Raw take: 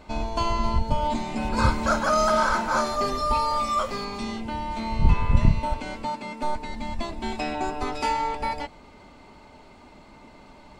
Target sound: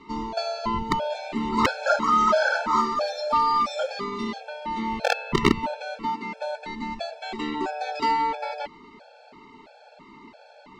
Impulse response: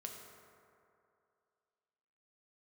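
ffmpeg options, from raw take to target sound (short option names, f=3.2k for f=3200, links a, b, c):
-filter_complex "[0:a]aeval=exprs='(mod(3.16*val(0)+1,2)-1)/3.16':c=same,acrossover=split=170 6200:gain=0.126 1 0.0708[a][b][c];[a][b][c]amix=inputs=3:normalize=0,afftfilt=real='re*gt(sin(2*PI*1.5*pts/sr)*(1-2*mod(floor(b*sr/1024/450),2)),0)':imag='im*gt(sin(2*PI*1.5*pts/sr)*(1-2*mod(floor(b*sr/1024/450),2)),0)':win_size=1024:overlap=0.75,volume=4.5dB"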